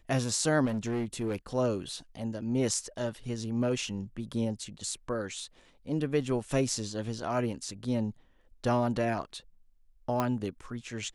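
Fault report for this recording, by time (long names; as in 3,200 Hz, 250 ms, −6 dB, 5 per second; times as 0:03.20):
0:00.65–0:01.36: clipping −27.5 dBFS
0:10.20: click −15 dBFS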